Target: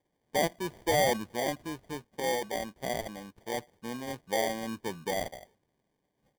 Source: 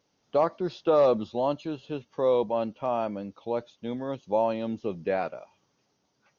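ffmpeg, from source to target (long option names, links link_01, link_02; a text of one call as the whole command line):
ffmpeg -i in.wav -filter_complex "[0:a]asettb=1/sr,asplit=3[link_01][link_02][link_03];[link_01]atrim=end=2.074[link_04];[link_02]atrim=start=2.07:end=3.48,asetpts=PTS-STARTPTS,afade=type=in:duration=0.004:curve=qsin,afade=type=out:start_time=1.406:duration=0.004:curve=qsin,tiltshelf=frequency=940:gain=-4[link_05];[link_03]atrim=start=3.476[link_06];[link_04][link_05]acrossfade=duration=0.004:curve1=hsin:curve2=qsin[link_07];[link_07][link_06]acrossfade=duration=0.004:curve1=qsin:curve2=hsin,acrossover=split=3800[link_08][link_09];[link_09]adelay=50[link_10];[link_08][link_10]amix=inputs=2:normalize=0,acrusher=samples=33:mix=1:aa=0.000001,volume=-5dB" out.wav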